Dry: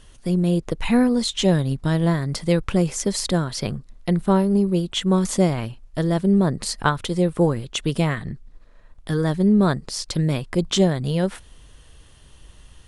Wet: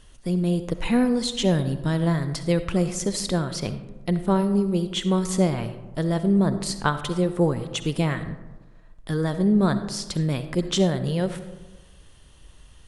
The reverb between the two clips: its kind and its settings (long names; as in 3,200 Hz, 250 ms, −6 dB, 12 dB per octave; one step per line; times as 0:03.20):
comb and all-pass reverb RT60 1.2 s, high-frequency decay 0.4×, pre-delay 25 ms, DRR 10.5 dB
level −3 dB